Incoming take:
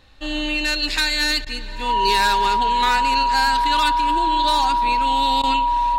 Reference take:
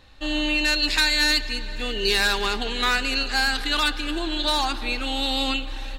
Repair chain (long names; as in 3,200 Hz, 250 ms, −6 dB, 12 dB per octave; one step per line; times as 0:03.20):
notch filter 960 Hz, Q 30
repair the gap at 0:01.45/0:05.42, 13 ms